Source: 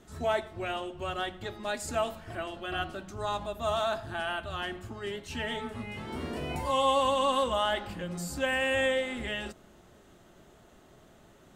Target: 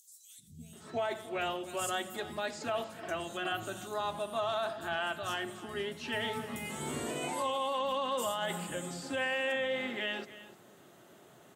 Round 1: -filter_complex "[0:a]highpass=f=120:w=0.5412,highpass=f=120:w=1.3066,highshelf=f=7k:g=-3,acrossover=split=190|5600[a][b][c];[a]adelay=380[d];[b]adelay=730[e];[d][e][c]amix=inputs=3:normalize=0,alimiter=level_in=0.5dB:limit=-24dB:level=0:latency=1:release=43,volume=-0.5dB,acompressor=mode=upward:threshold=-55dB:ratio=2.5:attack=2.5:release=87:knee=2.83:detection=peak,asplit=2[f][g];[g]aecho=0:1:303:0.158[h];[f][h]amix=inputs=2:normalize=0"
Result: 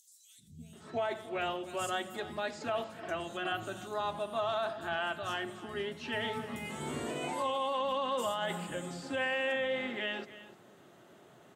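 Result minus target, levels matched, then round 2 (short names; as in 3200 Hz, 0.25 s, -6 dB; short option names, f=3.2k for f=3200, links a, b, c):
8000 Hz band -5.0 dB
-filter_complex "[0:a]highpass=f=120:w=0.5412,highpass=f=120:w=1.3066,highshelf=f=7k:g=7,acrossover=split=190|5600[a][b][c];[a]adelay=380[d];[b]adelay=730[e];[d][e][c]amix=inputs=3:normalize=0,alimiter=level_in=0.5dB:limit=-24dB:level=0:latency=1:release=43,volume=-0.5dB,acompressor=mode=upward:threshold=-55dB:ratio=2.5:attack=2.5:release=87:knee=2.83:detection=peak,asplit=2[f][g];[g]aecho=0:1:303:0.158[h];[f][h]amix=inputs=2:normalize=0"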